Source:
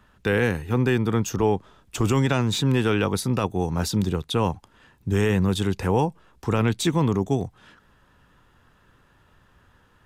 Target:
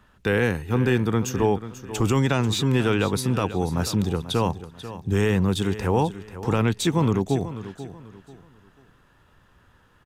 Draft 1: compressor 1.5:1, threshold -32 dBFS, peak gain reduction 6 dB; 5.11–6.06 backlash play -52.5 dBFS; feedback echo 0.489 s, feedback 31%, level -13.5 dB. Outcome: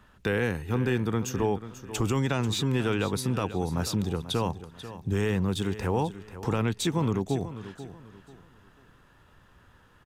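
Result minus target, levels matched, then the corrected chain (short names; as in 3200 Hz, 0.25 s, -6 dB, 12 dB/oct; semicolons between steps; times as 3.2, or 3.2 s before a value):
compressor: peak gain reduction +6 dB
5.11–6.06 backlash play -52.5 dBFS; feedback echo 0.489 s, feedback 31%, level -13.5 dB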